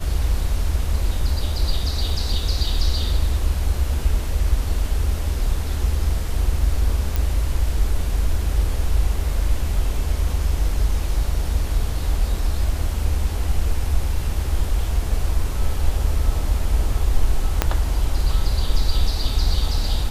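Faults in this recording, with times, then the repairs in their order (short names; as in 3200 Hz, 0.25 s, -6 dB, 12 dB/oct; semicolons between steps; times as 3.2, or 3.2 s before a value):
7.16 pop
17.62 pop -2 dBFS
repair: de-click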